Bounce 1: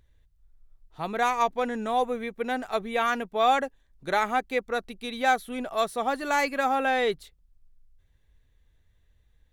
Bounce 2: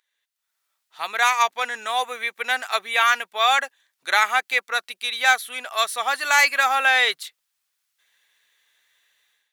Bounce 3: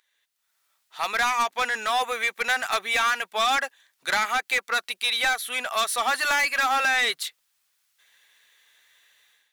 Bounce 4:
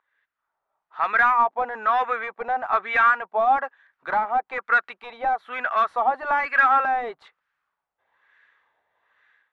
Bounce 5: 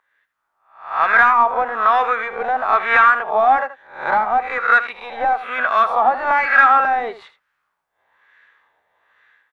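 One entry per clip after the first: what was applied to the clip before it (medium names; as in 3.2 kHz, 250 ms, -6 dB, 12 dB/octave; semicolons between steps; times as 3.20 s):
level rider gain up to 14 dB; high-pass 1.5 kHz 12 dB/octave; trim +2 dB
compression 4:1, threshold -20 dBFS, peak gain reduction 8 dB; saturation -22.5 dBFS, distortion -10 dB; trim +5 dB
LFO low-pass sine 1.1 Hz 760–1600 Hz
reverse spectral sustain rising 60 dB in 0.47 s; delay 79 ms -14 dB; trim +4.5 dB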